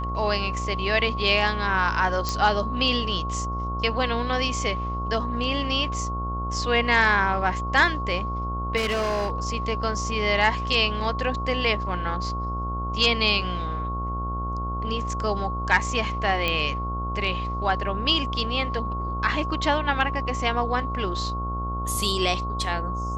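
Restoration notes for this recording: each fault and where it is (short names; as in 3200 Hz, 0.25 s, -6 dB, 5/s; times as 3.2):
buzz 60 Hz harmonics 23 -30 dBFS
tone 1100 Hz -30 dBFS
2.29 pop -11 dBFS
8.76–9.32 clipped -21.5 dBFS
16.48 pop -11 dBFS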